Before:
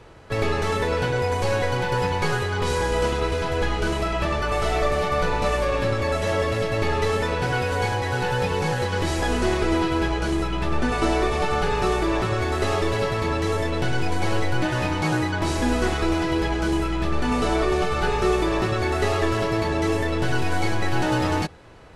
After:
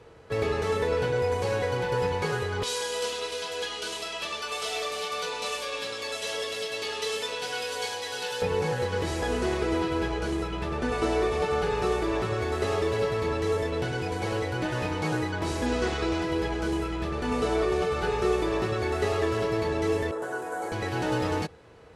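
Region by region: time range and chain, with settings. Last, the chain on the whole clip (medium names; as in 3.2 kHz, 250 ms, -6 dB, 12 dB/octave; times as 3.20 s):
2.63–8.42 s: high-pass 1.2 kHz 6 dB/octave + resonant high shelf 2.5 kHz +7 dB, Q 1.5 + comb 4.2 ms, depth 32%
15.66–16.22 s: low-pass 5.4 kHz + treble shelf 4 kHz +8.5 dB
20.11–20.72 s: high-pass 400 Hz + high-order bell 3.4 kHz -15 dB + doubling 38 ms -11.5 dB
whole clip: high-pass 47 Hz; peaking EQ 460 Hz +10 dB 0.2 oct; trim -6 dB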